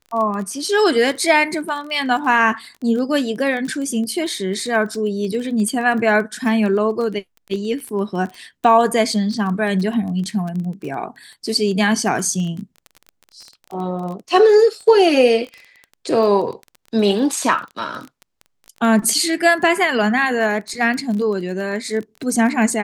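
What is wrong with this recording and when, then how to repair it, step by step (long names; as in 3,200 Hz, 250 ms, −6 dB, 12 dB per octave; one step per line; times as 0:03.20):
surface crackle 20 per second −26 dBFS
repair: click removal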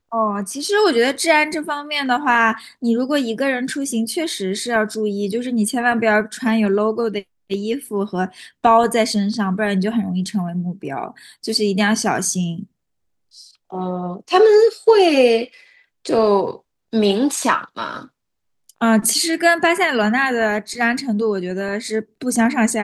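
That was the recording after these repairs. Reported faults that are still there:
none of them is left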